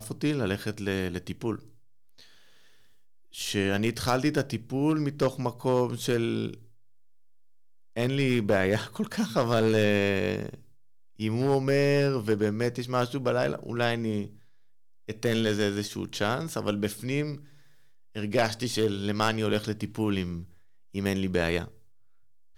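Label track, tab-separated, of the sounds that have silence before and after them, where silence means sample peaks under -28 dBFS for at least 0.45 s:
3.390000	6.490000	sound
7.970000	10.490000	sound
11.200000	14.250000	sound
15.090000	17.320000	sound
18.170000	20.370000	sound
20.960000	21.620000	sound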